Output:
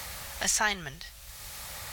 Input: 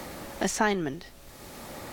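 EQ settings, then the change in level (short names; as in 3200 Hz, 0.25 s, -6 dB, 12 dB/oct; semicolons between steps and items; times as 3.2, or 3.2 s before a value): HPF 45 Hz; passive tone stack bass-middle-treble 10-0-10; low shelf 120 Hz +8 dB; +7.0 dB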